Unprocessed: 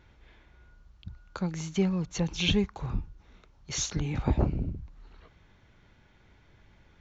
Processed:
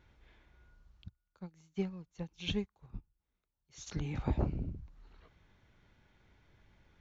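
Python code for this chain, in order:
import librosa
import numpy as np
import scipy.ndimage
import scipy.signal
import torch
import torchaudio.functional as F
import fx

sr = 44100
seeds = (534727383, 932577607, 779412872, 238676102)

y = fx.upward_expand(x, sr, threshold_db=-37.0, expansion=2.5, at=(1.08, 3.86), fade=0.02)
y = y * librosa.db_to_amplitude(-6.5)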